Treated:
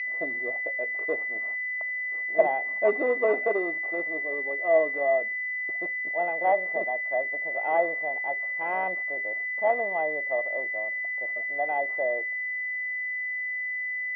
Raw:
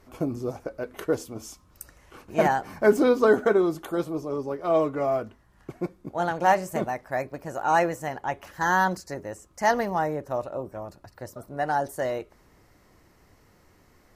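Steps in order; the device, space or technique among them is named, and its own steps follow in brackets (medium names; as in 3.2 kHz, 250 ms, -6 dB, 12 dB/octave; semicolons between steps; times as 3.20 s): toy sound module (decimation joined by straight lines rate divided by 6×; class-D stage that switches slowly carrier 2 kHz; cabinet simulation 590–4500 Hz, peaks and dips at 650 Hz +7 dB, 940 Hz -6 dB, 1.4 kHz -5 dB, 2.5 kHz +6 dB, 3.5 kHz -8 dB)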